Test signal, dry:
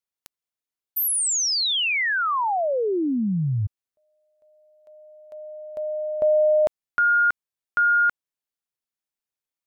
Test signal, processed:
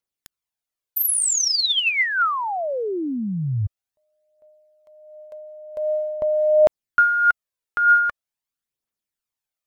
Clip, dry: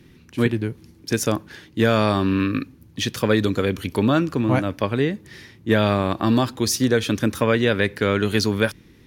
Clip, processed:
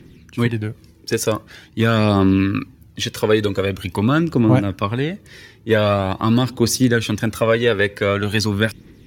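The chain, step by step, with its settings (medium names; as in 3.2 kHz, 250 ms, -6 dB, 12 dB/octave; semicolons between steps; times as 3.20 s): phaser 0.45 Hz, delay 2.4 ms, feedback 47%; trim +1 dB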